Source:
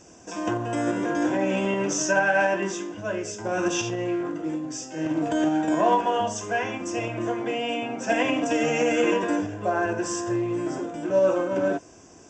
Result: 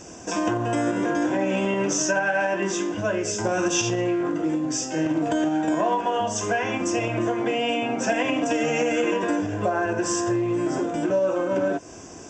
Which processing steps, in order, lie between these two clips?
compression 4:1, threshold -30 dBFS, peak gain reduction 12 dB; 3.35–4.01 s: tone controls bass +1 dB, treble +5 dB; trim +8.5 dB

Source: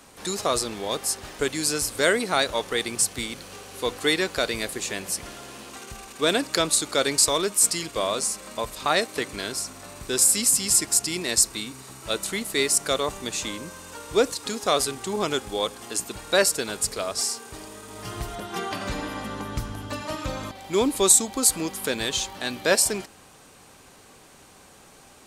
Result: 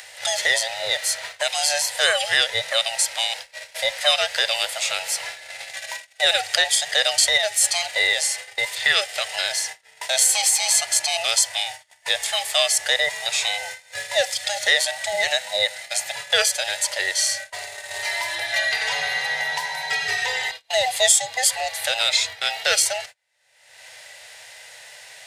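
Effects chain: every band turned upside down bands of 1 kHz; resonant low shelf 390 Hz -12 dB, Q 3; gate -36 dBFS, range -37 dB; ten-band graphic EQ 125 Hz +8 dB, 250 Hz -9 dB, 500 Hz -5 dB, 1 kHz -6 dB, 2 kHz +11 dB, 4 kHz +8 dB, 8 kHz +4 dB; upward compressor, threshold -30 dBFS; harmonic-percussive split harmonic +5 dB; three bands compressed up and down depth 40%; trim -4 dB

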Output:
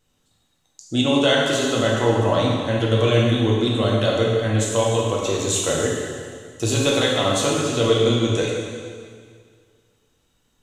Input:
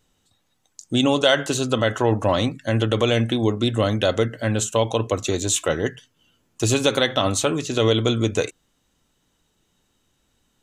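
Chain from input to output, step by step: plate-style reverb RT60 2 s, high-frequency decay 0.95×, DRR -3.5 dB; trim -4 dB

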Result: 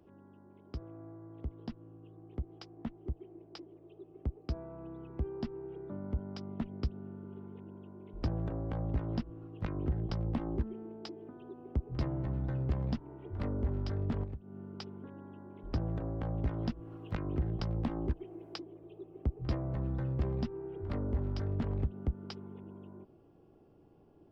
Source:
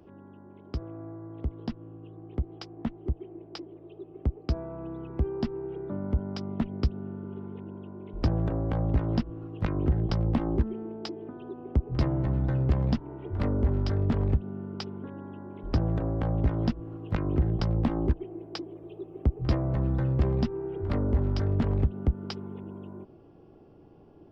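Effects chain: 14.23–14.77 s: compression 5:1, threshold -31 dBFS, peak gain reduction 11.5 dB; 16.44–18.63 s: tape noise reduction on one side only encoder only; trim -8 dB

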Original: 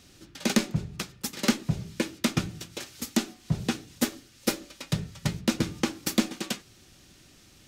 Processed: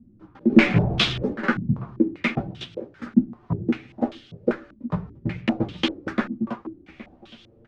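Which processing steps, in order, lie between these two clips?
0.52–1.33 s: power-law waveshaper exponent 0.5; chorus voices 4, 0.48 Hz, delay 13 ms, depth 4.5 ms; echo from a far wall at 140 m, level -17 dB; step-sequenced low-pass 5.1 Hz 230–3300 Hz; trim +3.5 dB

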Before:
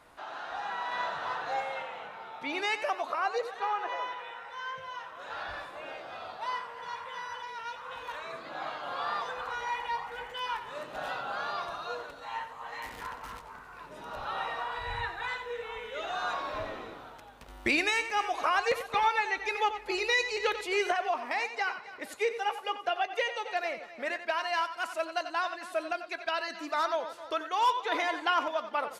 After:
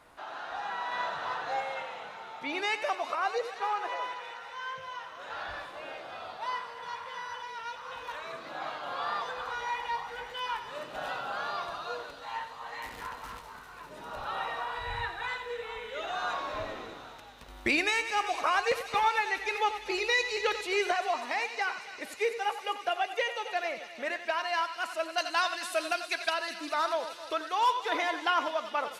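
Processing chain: 25.18–26.30 s: treble shelf 2.3 kHz +12 dB; on a send: feedback echo behind a high-pass 198 ms, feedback 82%, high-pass 3.5 kHz, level -9 dB

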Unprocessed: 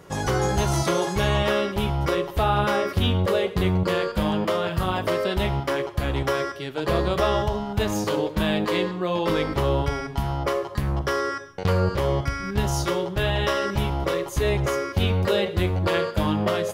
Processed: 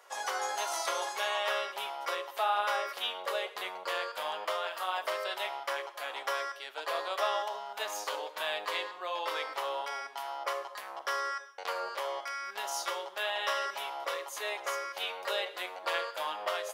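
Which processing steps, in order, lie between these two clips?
high-pass 640 Hz 24 dB/octave; trim -5.5 dB

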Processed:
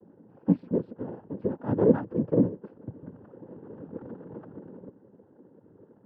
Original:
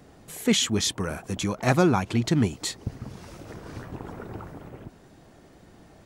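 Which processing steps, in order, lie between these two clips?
cascade formant filter u; noise-vocoded speech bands 8; trim +6.5 dB

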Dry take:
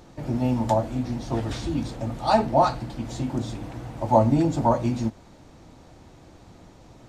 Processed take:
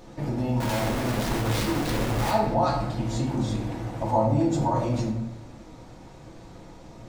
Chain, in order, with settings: in parallel at +0.5 dB: compressor with a negative ratio -27 dBFS, ratio -0.5; 0.60–2.31 s: on the sum: Schmitt trigger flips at -38 dBFS; reverberation RT60 1.0 s, pre-delay 4 ms, DRR -1.5 dB; trim -9 dB

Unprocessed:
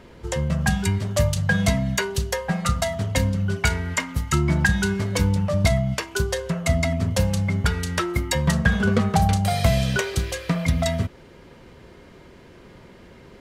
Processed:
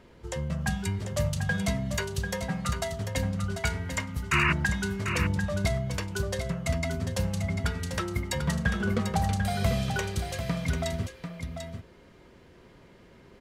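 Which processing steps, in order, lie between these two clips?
painted sound noise, 4.31–4.53 s, 930–2900 Hz -17 dBFS; delay 743 ms -7.5 dB; trim -8 dB

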